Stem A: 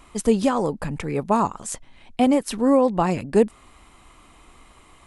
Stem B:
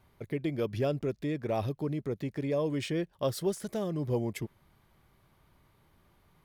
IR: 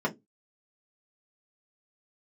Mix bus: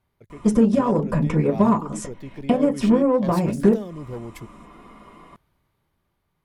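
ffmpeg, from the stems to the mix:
-filter_complex "[0:a]acompressor=threshold=0.0501:ratio=5,adelay=300,volume=1,asplit=2[s0][s1];[s1]volume=0.708[s2];[1:a]dynaudnorm=f=260:g=9:m=2.24,aeval=exprs='0.282*sin(PI/2*1.58*val(0)/0.282)':c=same,volume=0.178,asplit=2[s3][s4];[s4]apad=whole_len=236381[s5];[s0][s5]sidechaingate=range=0.0224:threshold=0.00112:ratio=16:detection=peak[s6];[2:a]atrim=start_sample=2205[s7];[s2][s7]afir=irnorm=-1:irlink=0[s8];[s6][s3][s8]amix=inputs=3:normalize=0,aeval=exprs='0.562*(cos(1*acos(clip(val(0)/0.562,-1,1)))-cos(1*PI/2))+0.0141*(cos(7*acos(clip(val(0)/0.562,-1,1)))-cos(7*PI/2))':c=same"

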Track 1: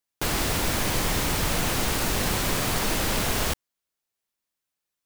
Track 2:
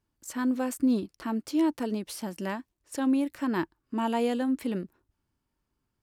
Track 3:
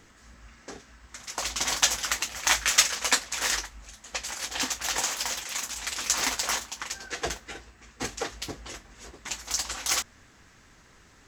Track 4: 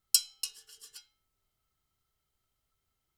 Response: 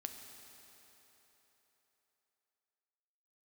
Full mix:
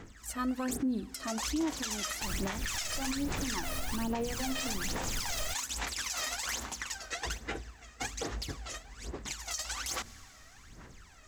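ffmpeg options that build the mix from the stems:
-filter_complex "[0:a]adelay=2000,volume=0.188[s0];[1:a]bandreject=f=60:t=h:w=6,bandreject=f=120:t=h:w=6,bandreject=f=180:t=h:w=6,bandreject=f=240:t=h:w=6,volume=0.631,asplit=2[s1][s2];[s2]volume=0.237[s3];[2:a]volume=0.531,asplit=2[s4][s5];[s5]volume=0.299[s6];[3:a]adelay=1000,volume=0.282[s7];[s0][s1][s4]amix=inputs=3:normalize=0,aphaser=in_gain=1:out_gain=1:delay=1.6:decay=0.8:speed=1.2:type=sinusoidal,acompressor=threshold=0.0562:ratio=4,volume=1[s8];[4:a]atrim=start_sample=2205[s9];[s3][s6]amix=inputs=2:normalize=0[s10];[s10][s9]afir=irnorm=-1:irlink=0[s11];[s7][s8][s11]amix=inputs=3:normalize=0,alimiter=level_in=1.06:limit=0.0631:level=0:latency=1:release=102,volume=0.944"

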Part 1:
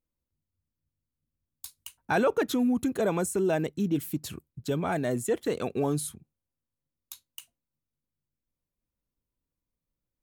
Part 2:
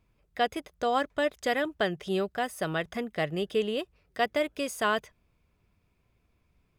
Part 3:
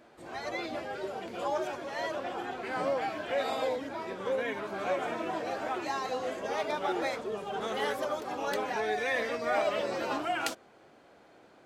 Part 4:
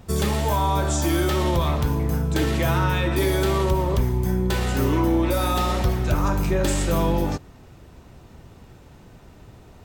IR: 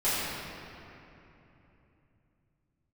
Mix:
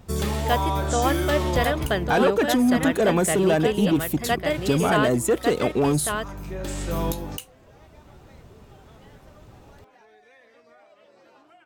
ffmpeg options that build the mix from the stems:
-filter_complex "[0:a]dynaudnorm=f=390:g=9:m=3.76,asoftclip=type=tanh:threshold=0.282,volume=0.75,asplit=2[s0][s1];[1:a]adelay=100,volume=1.41,asplit=2[s2][s3];[s3]volume=0.596[s4];[2:a]acompressor=threshold=0.01:ratio=10,adelay=1250,volume=0.266[s5];[3:a]volume=0.708[s6];[s1]apad=whole_len=434043[s7];[s6][s7]sidechaincompress=threshold=0.02:ratio=12:attack=8.7:release=1000[s8];[s4]aecho=0:1:1151:1[s9];[s0][s2][s5][s8][s9]amix=inputs=5:normalize=0"

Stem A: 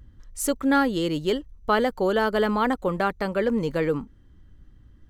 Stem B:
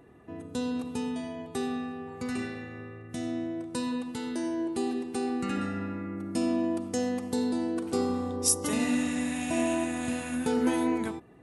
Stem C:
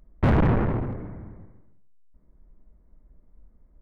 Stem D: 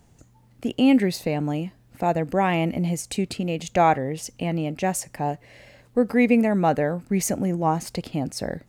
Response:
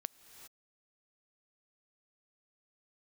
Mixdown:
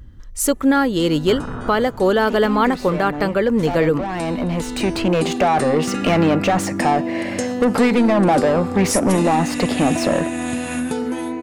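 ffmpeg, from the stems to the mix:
-filter_complex "[0:a]acontrast=29,volume=1.33,asplit=2[s0][s1];[s1]volume=0.0944[s2];[1:a]acompressor=threshold=0.02:ratio=5,adelay=450,volume=1.33[s3];[2:a]alimiter=limit=0.0794:level=0:latency=1,lowpass=f=1400:t=q:w=4.9,adelay=1050,volume=0.501[s4];[3:a]acrossover=split=200[s5][s6];[s6]acompressor=threshold=0.0708:ratio=6[s7];[s5][s7]amix=inputs=2:normalize=0,asplit=2[s8][s9];[s9]highpass=f=720:p=1,volume=17.8,asoftclip=type=tanh:threshold=0.211[s10];[s8][s10]amix=inputs=2:normalize=0,lowpass=f=2900:p=1,volume=0.501,adynamicequalizer=threshold=0.0112:dfrequency=1800:dqfactor=0.7:tfrequency=1800:tqfactor=0.7:attack=5:release=100:ratio=0.375:range=3.5:mode=cutabove:tftype=highshelf,adelay=1650,volume=0.562[s11];[4:a]atrim=start_sample=2205[s12];[s2][s12]afir=irnorm=-1:irlink=0[s13];[s0][s3][s4][s11][s13]amix=inputs=5:normalize=0,dynaudnorm=f=250:g=7:m=3.55,alimiter=limit=0.447:level=0:latency=1:release=390"

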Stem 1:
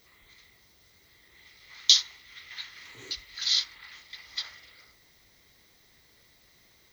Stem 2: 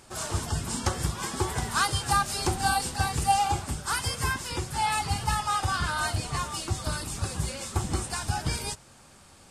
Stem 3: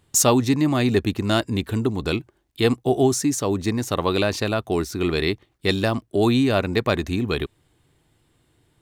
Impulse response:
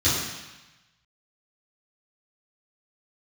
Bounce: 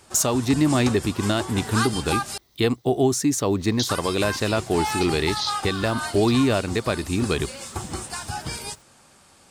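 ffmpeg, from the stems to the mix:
-filter_complex "[0:a]equalizer=f=2100:t=o:w=0.77:g=-11.5,alimiter=limit=0.211:level=0:latency=1:release=290,adelay=1900,volume=1[s0];[1:a]lowshelf=f=110:g=-10,volume=1.06,asplit=3[s1][s2][s3];[s1]atrim=end=2.38,asetpts=PTS-STARTPTS,afade=t=out:st=2.376:d=0.004:c=hsin[s4];[s2]atrim=start=2.38:end=3.89,asetpts=PTS-STARTPTS,volume=0[s5];[s3]atrim=start=3.89,asetpts=PTS-STARTPTS,afade=t=in:d=0.004:c=hsin[s6];[s4][s5][s6]concat=n=3:v=0:a=1[s7];[2:a]volume=1.12[s8];[s0][s7][s8]amix=inputs=3:normalize=0,alimiter=limit=0.316:level=0:latency=1:release=317"

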